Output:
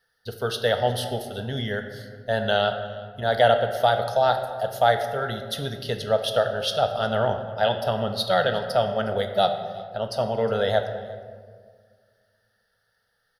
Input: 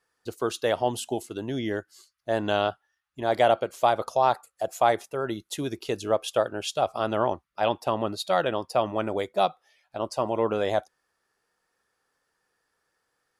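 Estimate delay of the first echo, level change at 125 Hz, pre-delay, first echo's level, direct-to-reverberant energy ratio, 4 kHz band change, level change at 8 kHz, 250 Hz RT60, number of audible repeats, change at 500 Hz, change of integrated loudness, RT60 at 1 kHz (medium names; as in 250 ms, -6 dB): 361 ms, +7.5 dB, 4 ms, -22.0 dB, 6.0 dB, +7.0 dB, -2.0 dB, 2.3 s, 1, +3.0 dB, +2.5 dB, 1.5 s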